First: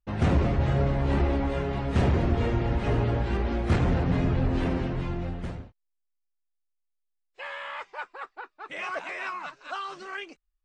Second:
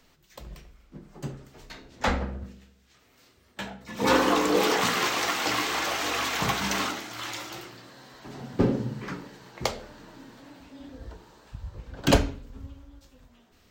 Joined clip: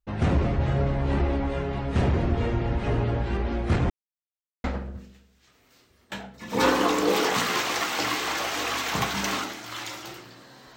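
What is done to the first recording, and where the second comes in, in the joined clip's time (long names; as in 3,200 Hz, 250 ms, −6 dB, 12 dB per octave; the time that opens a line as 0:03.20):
first
0:03.90–0:04.64: silence
0:04.64: continue with second from 0:02.11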